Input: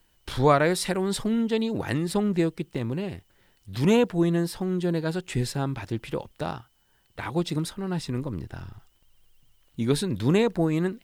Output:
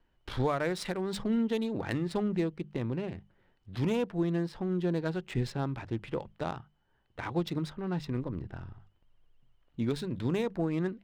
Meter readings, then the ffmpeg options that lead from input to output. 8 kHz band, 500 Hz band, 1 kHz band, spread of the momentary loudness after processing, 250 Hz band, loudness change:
-13.5 dB, -7.5 dB, -8.5 dB, 11 LU, -6.0 dB, -6.5 dB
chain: -af "adynamicsmooth=sensitivity=5.5:basefreq=2.2k,bandreject=f=50:t=h:w=6,bandreject=f=100:t=h:w=6,bandreject=f=150:t=h:w=6,bandreject=f=200:t=h:w=6,alimiter=limit=-16.5dB:level=0:latency=1:release=425,volume=-3.5dB"

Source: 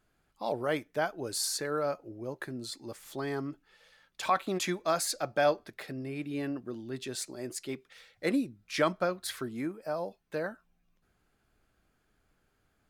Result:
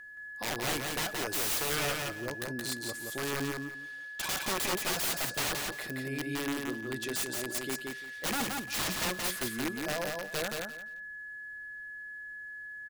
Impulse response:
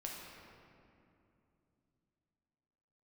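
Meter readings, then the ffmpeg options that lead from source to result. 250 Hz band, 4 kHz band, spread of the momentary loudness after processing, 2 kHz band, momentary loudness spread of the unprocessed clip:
-2.0 dB, +5.0 dB, 12 LU, +5.5 dB, 11 LU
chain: -filter_complex "[0:a]aeval=exprs='val(0)+0.00501*sin(2*PI*1700*n/s)':c=same,aemphasis=mode=production:type=cd,aeval=exprs='(mod(22.4*val(0)+1,2)-1)/22.4':c=same,asplit=2[a][b];[b]aecho=0:1:173|346|519:0.668|0.134|0.0267[c];[a][c]amix=inputs=2:normalize=0"

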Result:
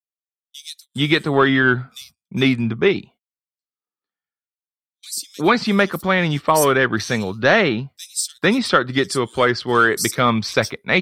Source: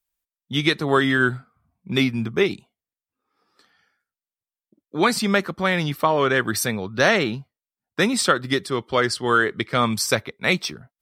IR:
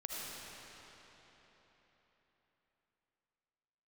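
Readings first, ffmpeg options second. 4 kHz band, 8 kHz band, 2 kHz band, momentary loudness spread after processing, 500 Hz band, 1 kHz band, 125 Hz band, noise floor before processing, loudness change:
+1.5 dB, +3.0 dB, +3.5 dB, 13 LU, +3.5 dB, +3.5 dB, +3.5 dB, under -85 dBFS, +3.0 dB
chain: -filter_complex "[0:a]aeval=exprs='0.668*(cos(1*acos(clip(val(0)/0.668,-1,1)))-cos(1*PI/2))+0.0299*(cos(5*acos(clip(val(0)/0.668,-1,1)))-cos(5*PI/2))':c=same,acrossover=split=4900[a][b];[a]adelay=450[c];[c][b]amix=inputs=2:normalize=0,agate=range=-35dB:threshold=-47dB:ratio=16:detection=peak,volume=2.5dB"

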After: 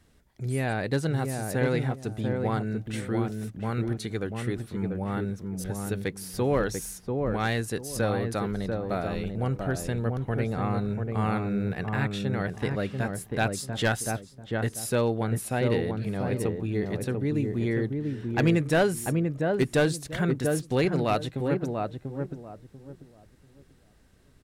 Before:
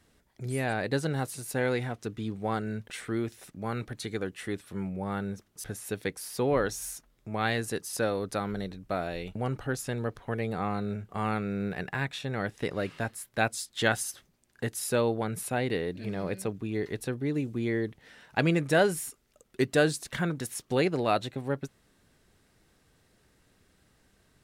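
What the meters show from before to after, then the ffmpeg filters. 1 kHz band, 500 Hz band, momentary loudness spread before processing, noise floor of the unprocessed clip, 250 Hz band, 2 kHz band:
+1.0 dB, +2.0 dB, 9 LU, -67 dBFS, +4.0 dB, 0.0 dB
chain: -filter_complex "[0:a]asplit=2[a][b];[b]adelay=691,lowpass=f=880:p=1,volume=-3dB,asplit=2[c][d];[d]adelay=691,lowpass=f=880:p=1,volume=0.27,asplit=2[e][f];[f]adelay=691,lowpass=f=880:p=1,volume=0.27,asplit=2[g][h];[h]adelay=691,lowpass=f=880:p=1,volume=0.27[i];[c][e][g][i]amix=inputs=4:normalize=0[j];[a][j]amix=inputs=2:normalize=0,aeval=exprs='clip(val(0),-1,0.133)':c=same,lowshelf=f=160:g=7.5"

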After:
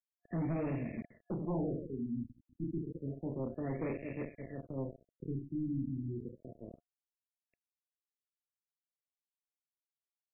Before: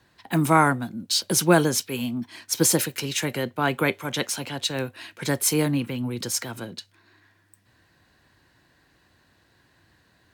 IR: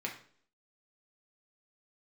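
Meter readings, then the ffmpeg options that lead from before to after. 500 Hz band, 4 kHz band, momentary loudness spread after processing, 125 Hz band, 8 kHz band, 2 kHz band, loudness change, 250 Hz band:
-15.0 dB, under -40 dB, 12 LU, -11.0 dB, under -40 dB, -26.5 dB, -16.0 dB, -11.5 dB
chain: -filter_complex "[0:a]highshelf=f=8.4k:g=2.5,aecho=1:1:30|72|130.8|213.1|328.4:0.631|0.398|0.251|0.158|0.1,adynamicequalizer=threshold=0.0141:dfrequency=4700:dqfactor=1.8:tfrequency=4700:tqfactor=1.8:attack=5:release=100:ratio=0.375:range=2.5:mode=cutabove:tftype=bell,acrossover=split=590[a][b];[b]acompressor=threshold=-39dB:ratio=5[c];[a][c]amix=inputs=2:normalize=0,aeval=exprs='val(0)*gte(abs(val(0)),0.0299)':c=same,afftfilt=real='re*(1-between(b*sr/4096,700,1700))':imag='im*(1-between(b*sr/4096,700,1700))':win_size=4096:overlap=0.75,asoftclip=type=tanh:threshold=-24.5dB,afftfilt=real='re*lt(b*sr/1024,320*pow(2800/320,0.5+0.5*sin(2*PI*0.3*pts/sr)))':imag='im*lt(b*sr/1024,320*pow(2800/320,0.5+0.5*sin(2*PI*0.3*pts/sr)))':win_size=1024:overlap=0.75,volume=-7dB"

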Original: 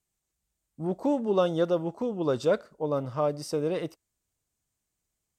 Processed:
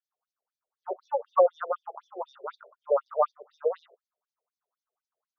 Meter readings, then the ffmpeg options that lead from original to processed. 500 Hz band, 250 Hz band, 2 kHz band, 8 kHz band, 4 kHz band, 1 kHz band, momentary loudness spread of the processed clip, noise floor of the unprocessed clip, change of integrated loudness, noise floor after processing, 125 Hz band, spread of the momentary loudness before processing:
-1.0 dB, under -20 dB, -6.0 dB, under -25 dB, under -15 dB, +4.5 dB, 18 LU, -84 dBFS, -0.5 dB, under -85 dBFS, under -40 dB, 8 LU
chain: -af "highshelf=f=1.7k:t=q:w=3:g=-11,afftfilt=real='re*between(b*sr/1024,500*pow(4800/500,0.5+0.5*sin(2*PI*4*pts/sr))/1.41,500*pow(4800/500,0.5+0.5*sin(2*PI*4*pts/sr))*1.41)':imag='im*between(b*sr/1024,500*pow(4800/500,0.5+0.5*sin(2*PI*4*pts/sr))/1.41,500*pow(4800/500,0.5+0.5*sin(2*PI*4*pts/sr))*1.41)':win_size=1024:overlap=0.75,volume=5.5dB"

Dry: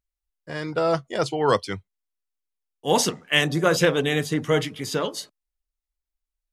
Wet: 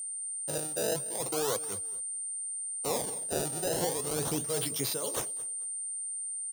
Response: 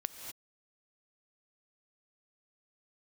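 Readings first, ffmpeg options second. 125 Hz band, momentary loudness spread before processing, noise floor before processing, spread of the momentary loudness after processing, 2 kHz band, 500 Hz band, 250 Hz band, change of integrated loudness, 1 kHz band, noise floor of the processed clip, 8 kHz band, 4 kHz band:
-12.5 dB, 15 LU, under -85 dBFS, 4 LU, -17.5 dB, -10.5 dB, -12.0 dB, -8.5 dB, -12.0 dB, -37 dBFS, +4.5 dB, -11.0 dB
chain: -filter_complex "[0:a]acrusher=samples=23:mix=1:aa=0.000001:lfo=1:lforange=36.8:lforate=0.36,tremolo=f=2.1:d=0.82,agate=range=-33dB:threshold=-47dB:ratio=3:detection=peak,bass=f=250:g=-14,treble=f=4k:g=10,acompressor=threshold=-25dB:ratio=2,aeval=exprs='val(0)+0.0178*sin(2*PI*8900*n/s)':c=same,asoftclip=type=tanh:threshold=-10.5dB,equalizer=f=125:t=o:w=1:g=11,equalizer=f=500:t=o:w=1:g=3,equalizer=f=2k:t=o:w=1:g=-7,asplit=2[a][b];[b]aecho=0:1:220|440:0.0944|0.0255[c];[a][c]amix=inputs=2:normalize=0,alimiter=limit=-18dB:level=0:latency=1:release=10"

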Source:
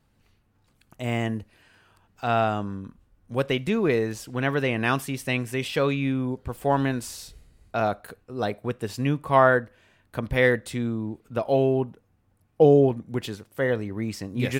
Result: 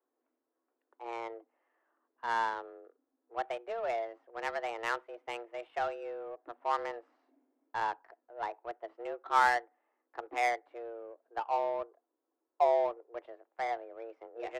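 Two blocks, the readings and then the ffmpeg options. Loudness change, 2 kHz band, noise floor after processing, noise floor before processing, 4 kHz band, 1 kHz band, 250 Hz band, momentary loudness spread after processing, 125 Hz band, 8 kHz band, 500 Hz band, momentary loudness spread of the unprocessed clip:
-10.0 dB, -9.0 dB, under -85 dBFS, -66 dBFS, -12.5 dB, -3.5 dB, -25.0 dB, 18 LU, under -35 dB, -14.0 dB, -12.5 dB, 15 LU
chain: -filter_complex "[0:a]afreqshift=230,acrossover=split=590 2500:gain=0.112 1 0.126[a][b][c];[a][b][c]amix=inputs=3:normalize=0,adynamicsmooth=sensitivity=2:basefreq=1k,volume=-6.5dB"

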